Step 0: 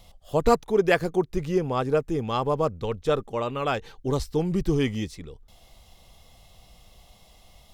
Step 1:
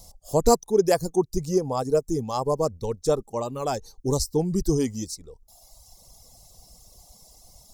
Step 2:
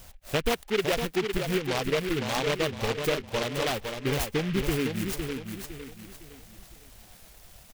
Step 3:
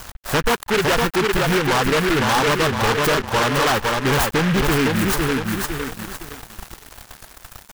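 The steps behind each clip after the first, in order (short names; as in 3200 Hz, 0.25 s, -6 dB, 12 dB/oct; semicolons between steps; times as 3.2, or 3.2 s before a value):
resonant high shelf 4400 Hz +9.5 dB, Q 1.5; reverb removal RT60 1.3 s; band shelf 2100 Hz -11 dB; gain +2 dB
compressor 3:1, threshold -25 dBFS, peak gain reduction 10 dB; on a send: feedback echo 0.509 s, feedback 36%, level -6 dB; on the sum: noise-modulated delay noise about 2100 Hz, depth 0.16 ms
band shelf 1200 Hz +9 dB 1.3 oct; sample leveller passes 5; crossover distortion -46.5 dBFS; gain -3.5 dB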